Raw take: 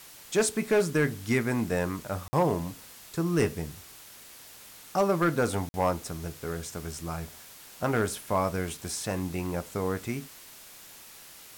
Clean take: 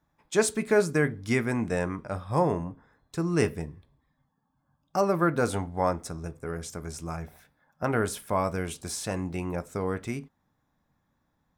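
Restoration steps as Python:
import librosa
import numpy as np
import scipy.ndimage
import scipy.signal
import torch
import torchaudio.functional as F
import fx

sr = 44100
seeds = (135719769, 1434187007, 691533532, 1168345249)

y = fx.fix_declip(x, sr, threshold_db=-17.0)
y = fx.fix_interpolate(y, sr, at_s=(2.28, 5.69), length_ms=50.0)
y = fx.noise_reduce(y, sr, print_start_s=4.11, print_end_s=4.61, reduce_db=25.0)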